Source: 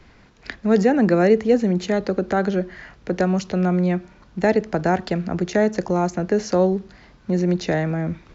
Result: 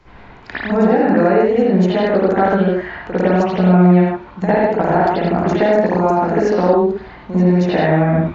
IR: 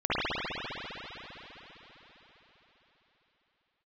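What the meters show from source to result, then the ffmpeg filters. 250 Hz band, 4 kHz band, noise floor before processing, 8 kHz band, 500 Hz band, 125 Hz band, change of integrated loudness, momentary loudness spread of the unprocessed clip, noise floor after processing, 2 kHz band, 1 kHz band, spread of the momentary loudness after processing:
+6.0 dB, +3.5 dB, -51 dBFS, no reading, +6.0 dB, +7.0 dB, +6.0 dB, 11 LU, -39 dBFS, +6.0 dB, +9.5 dB, 7 LU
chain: -filter_complex "[0:a]equalizer=f=900:t=o:w=0.89:g=7.5,acompressor=threshold=0.112:ratio=6[s0];[1:a]atrim=start_sample=2205,afade=t=out:st=0.26:d=0.01,atrim=end_sample=11907[s1];[s0][s1]afir=irnorm=-1:irlink=0,volume=0.668"

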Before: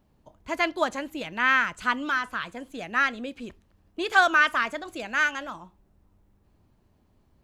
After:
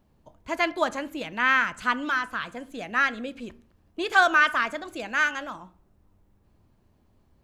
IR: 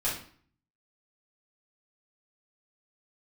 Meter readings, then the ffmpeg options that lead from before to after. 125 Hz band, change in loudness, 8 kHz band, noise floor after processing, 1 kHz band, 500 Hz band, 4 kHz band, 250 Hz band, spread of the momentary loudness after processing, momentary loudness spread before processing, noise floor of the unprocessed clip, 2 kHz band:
no reading, +0.5 dB, 0.0 dB, -64 dBFS, +0.5 dB, +0.5 dB, 0.0 dB, +0.5 dB, 17 LU, 17 LU, -65 dBFS, +0.5 dB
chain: -filter_complex "[0:a]asplit=2[s0][s1];[1:a]atrim=start_sample=2205,lowpass=2100[s2];[s1][s2]afir=irnorm=-1:irlink=0,volume=0.0944[s3];[s0][s3]amix=inputs=2:normalize=0"

